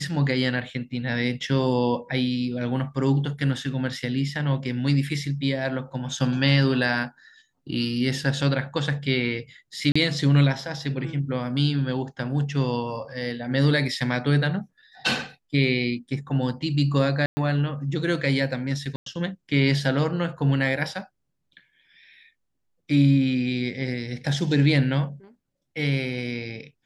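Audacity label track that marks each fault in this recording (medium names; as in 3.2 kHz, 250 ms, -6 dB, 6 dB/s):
9.920000	9.960000	dropout 35 ms
17.260000	17.370000	dropout 110 ms
18.960000	19.060000	dropout 103 ms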